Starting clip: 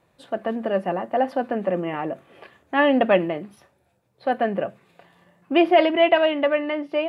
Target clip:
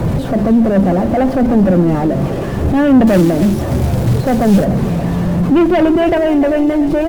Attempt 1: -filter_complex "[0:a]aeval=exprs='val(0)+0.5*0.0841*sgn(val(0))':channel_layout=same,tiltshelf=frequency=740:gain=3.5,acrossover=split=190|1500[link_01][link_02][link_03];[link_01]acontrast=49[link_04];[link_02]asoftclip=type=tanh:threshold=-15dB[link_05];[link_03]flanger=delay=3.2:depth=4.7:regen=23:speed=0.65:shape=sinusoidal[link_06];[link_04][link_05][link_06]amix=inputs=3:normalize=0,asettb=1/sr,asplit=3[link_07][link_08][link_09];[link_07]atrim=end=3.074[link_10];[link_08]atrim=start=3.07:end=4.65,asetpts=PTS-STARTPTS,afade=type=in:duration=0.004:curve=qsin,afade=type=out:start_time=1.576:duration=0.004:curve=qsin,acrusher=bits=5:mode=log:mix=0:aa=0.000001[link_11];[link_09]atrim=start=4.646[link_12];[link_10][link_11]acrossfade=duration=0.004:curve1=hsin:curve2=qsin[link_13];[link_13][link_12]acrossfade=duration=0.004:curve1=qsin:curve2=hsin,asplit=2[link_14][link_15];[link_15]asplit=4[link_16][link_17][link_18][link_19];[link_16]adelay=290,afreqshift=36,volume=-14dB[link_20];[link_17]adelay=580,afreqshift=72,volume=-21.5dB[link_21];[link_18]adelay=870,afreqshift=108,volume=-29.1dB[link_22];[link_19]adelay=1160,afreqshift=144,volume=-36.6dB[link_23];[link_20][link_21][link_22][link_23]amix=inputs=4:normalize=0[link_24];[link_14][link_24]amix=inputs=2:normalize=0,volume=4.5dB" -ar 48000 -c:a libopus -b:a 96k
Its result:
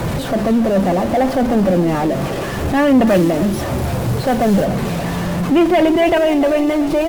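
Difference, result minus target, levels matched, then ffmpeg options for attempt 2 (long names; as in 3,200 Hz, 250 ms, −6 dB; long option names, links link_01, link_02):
1,000 Hz band +3.5 dB
-filter_complex "[0:a]aeval=exprs='val(0)+0.5*0.0841*sgn(val(0))':channel_layout=same,tiltshelf=frequency=740:gain=10,acrossover=split=190|1500[link_01][link_02][link_03];[link_01]acontrast=49[link_04];[link_02]asoftclip=type=tanh:threshold=-15dB[link_05];[link_03]flanger=delay=3.2:depth=4.7:regen=23:speed=0.65:shape=sinusoidal[link_06];[link_04][link_05][link_06]amix=inputs=3:normalize=0,asettb=1/sr,asplit=3[link_07][link_08][link_09];[link_07]atrim=end=3.074[link_10];[link_08]atrim=start=3.07:end=4.65,asetpts=PTS-STARTPTS,afade=type=in:duration=0.004:curve=qsin,afade=type=out:start_time=1.576:duration=0.004:curve=qsin,acrusher=bits=5:mode=log:mix=0:aa=0.000001[link_11];[link_09]atrim=start=4.646[link_12];[link_10][link_11]acrossfade=duration=0.004:curve1=hsin:curve2=qsin[link_13];[link_13][link_12]acrossfade=duration=0.004:curve1=qsin:curve2=hsin,asplit=2[link_14][link_15];[link_15]asplit=4[link_16][link_17][link_18][link_19];[link_16]adelay=290,afreqshift=36,volume=-14dB[link_20];[link_17]adelay=580,afreqshift=72,volume=-21.5dB[link_21];[link_18]adelay=870,afreqshift=108,volume=-29.1dB[link_22];[link_19]adelay=1160,afreqshift=144,volume=-36.6dB[link_23];[link_20][link_21][link_22][link_23]amix=inputs=4:normalize=0[link_24];[link_14][link_24]amix=inputs=2:normalize=0,volume=4.5dB" -ar 48000 -c:a libopus -b:a 96k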